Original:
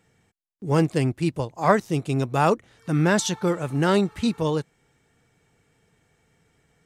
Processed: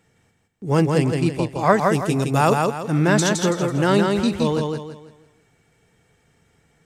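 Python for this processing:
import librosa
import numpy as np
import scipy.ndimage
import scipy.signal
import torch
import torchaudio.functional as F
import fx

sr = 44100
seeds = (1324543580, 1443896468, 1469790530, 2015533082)

y = fx.high_shelf(x, sr, hz=7100.0, db=10.0, at=(1.92, 2.51))
y = fx.echo_feedback(y, sr, ms=165, feedback_pct=35, wet_db=-3.5)
y = F.gain(torch.from_numpy(y), 2.0).numpy()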